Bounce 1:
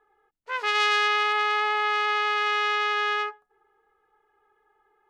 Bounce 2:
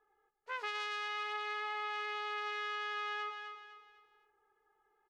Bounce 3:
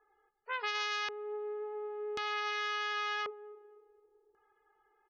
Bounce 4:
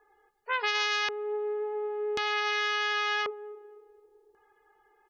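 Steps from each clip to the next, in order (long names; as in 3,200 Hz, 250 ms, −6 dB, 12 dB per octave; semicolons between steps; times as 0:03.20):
on a send: repeating echo 253 ms, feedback 38%, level −12 dB; on the sum: downward compressor, threshold −26 dBFS, peak gain reduction 9 dB; level −8.5 dB
spectral peaks only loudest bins 64; auto-filter low-pass square 0.46 Hz 430–5,900 Hz; level +3 dB
notch filter 1,300 Hz, Q 13; level +7.5 dB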